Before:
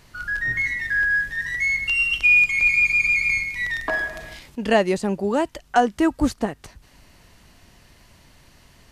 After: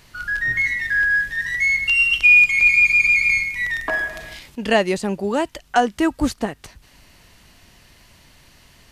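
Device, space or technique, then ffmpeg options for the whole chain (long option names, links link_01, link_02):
presence and air boost: -filter_complex "[0:a]equalizer=frequency=3000:width_type=o:width=1.9:gain=4,highshelf=frequency=9600:gain=5.5,asettb=1/sr,asplit=3[link_01][link_02][link_03];[link_01]atrim=end=3.484[link_04];[link_02]atrim=start=3.48:end=4.1,asetpts=PTS-STARTPTS,afade=type=in:duration=0.004:curve=qsin,afade=type=out:start_time=0.616:duration=0.004:curve=qsin,equalizer=frequency=4200:width_type=o:width=0.77:gain=-5.5[link_05];[link_03]atrim=start=4.096[link_06];[link_04][link_05]acrossfade=duration=0.004:curve1=hsin:curve2=qsin[link_07];[link_07][link_06]acrossfade=duration=0.004:curve1=qsin:curve2=hsin"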